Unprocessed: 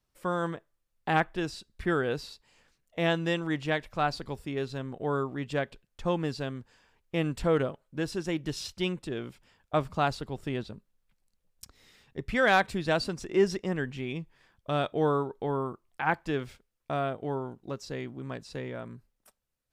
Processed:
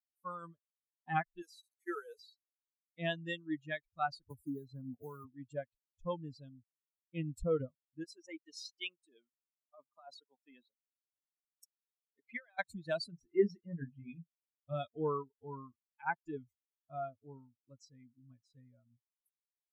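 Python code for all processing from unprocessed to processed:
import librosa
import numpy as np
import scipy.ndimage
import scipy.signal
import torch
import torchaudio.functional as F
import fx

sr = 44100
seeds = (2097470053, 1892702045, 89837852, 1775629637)

y = fx.chain(x, sr, fx.delta_mod(bps=64000, step_db=-40.5),
    fx.cheby1_highpass(hz=350.0, order=6), at=(1.42, 2.19))
y = fx.chain(y, sr, fx.band_shelf(hz=2600.0, db=-13.5, octaves=1.0),
    fx.quant_companded(bits=6),
    fx.band_squash(depth_pct=100), at=(4.3, 5.25))
y = fx.chain(y, sr, fx.highpass(hz=580.0, slope=12),
    fx.tilt_eq(slope=-2.0),
    fx.over_compress(threshold_db=-32.0, ratio=-1.0), at=(8.04, 12.59))
y = fx.chain(y, sr, fx.peak_eq(hz=7900.0, db=-10.5, octaves=1.7),
    fx.doubler(ms=29.0, db=-6), at=(13.1, 14.74))
y = fx.bin_expand(y, sr, power=3.0)
y = fx.high_shelf(y, sr, hz=9900.0, db=-4.5)
y = y * librosa.db_to_amplitude(-3.0)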